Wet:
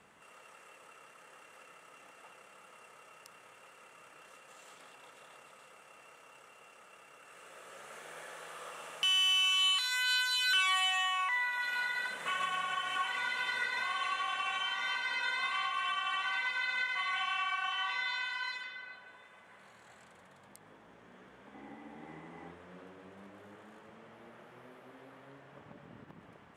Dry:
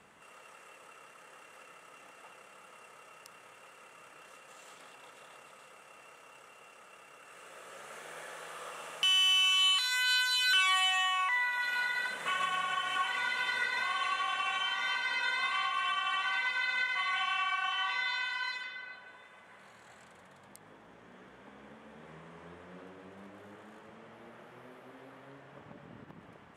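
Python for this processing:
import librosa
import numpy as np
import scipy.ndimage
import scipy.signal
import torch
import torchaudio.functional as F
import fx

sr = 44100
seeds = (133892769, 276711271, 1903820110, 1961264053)

y = fx.small_body(x, sr, hz=(300.0, 800.0, 2000.0), ring_ms=45, db=13, at=(21.54, 22.51))
y = F.gain(torch.from_numpy(y), -2.0).numpy()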